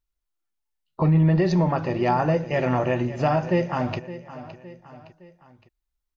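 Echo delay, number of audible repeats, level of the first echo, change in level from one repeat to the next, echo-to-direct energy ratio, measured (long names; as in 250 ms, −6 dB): 564 ms, 3, −15.0 dB, −6.0 dB, −14.0 dB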